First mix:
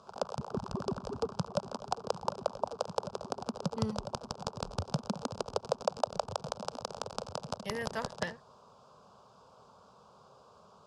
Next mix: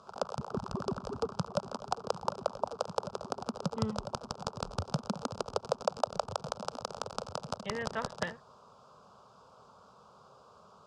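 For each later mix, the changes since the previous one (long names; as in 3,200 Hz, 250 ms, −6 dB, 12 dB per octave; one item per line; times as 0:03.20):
speech: add linear-phase brick-wall low-pass 4,000 Hz
master: add parametric band 1,300 Hz +5 dB 0.3 octaves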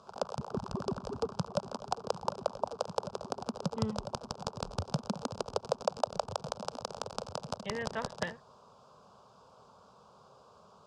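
master: add parametric band 1,300 Hz −5 dB 0.3 octaves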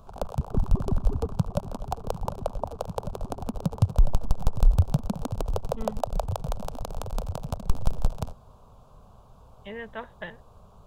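speech: entry +2.00 s
background: remove loudspeaker in its box 250–8,300 Hz, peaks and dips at 290 Hz −6 dB, 710 Hz −4 dB, 1,400 Hz +3 dB, 2,200 Hz −3 dB, 5,000 Hz +9 dB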